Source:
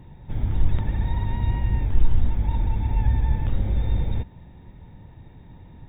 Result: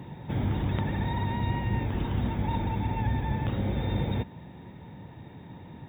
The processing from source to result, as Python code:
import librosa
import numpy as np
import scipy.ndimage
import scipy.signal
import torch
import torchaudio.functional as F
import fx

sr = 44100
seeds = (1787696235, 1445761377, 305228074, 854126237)

y = scipy.signal.sosfilt(scipy.signal.butter(2, 140.0, 'highpass', fs=sr, output='sos'), x)
y = fx.rider(y, sr, range_db=4, speed_s=0.5)
y = y * 10.0 ** (4.5 / 20.0)